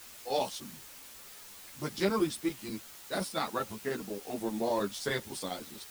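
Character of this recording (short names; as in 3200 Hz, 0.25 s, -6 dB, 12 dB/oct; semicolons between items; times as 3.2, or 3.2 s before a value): chopped level 10 Hz, duty 85%; a quantiser's noise floor 8-bit, dither triangular; a shimmering, thickened sound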